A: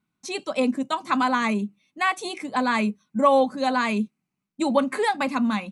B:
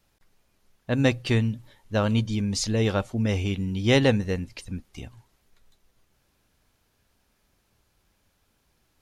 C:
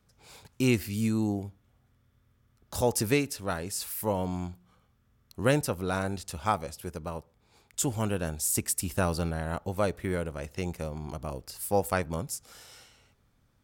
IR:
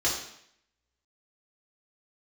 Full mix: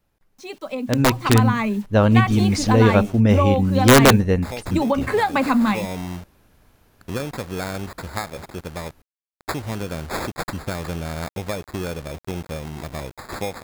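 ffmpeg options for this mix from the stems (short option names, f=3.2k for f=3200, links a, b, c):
-filter_complex "[0:a]lowpass=f=3k:p=1,adelay=150,volume=-4dB[a];[1:a]equalizer=f=5.6k:t=o:w=2.7:g=-8.5,aeval=exprs='(mod(3.98*val(0)+1,2)-1)/3.98':c=same,volume=-0.5dB[b];[2:a]acompressor=threshold=-28dB:ratio=16,acrusher=samples=15:mix=1:aa=0.000001,adelay=1700,volume=-9dB[c];[a][c]amix=inputs=2:normalize=0,acrusher=bits=8:mix=0:aa=0.000001,acompressor=threshold=-27dB:ratio=6,volume=0dB[d];[b][d]amix=inputs=2:normalize=0,dynaudnorm=f=100:g=21:m=14dB"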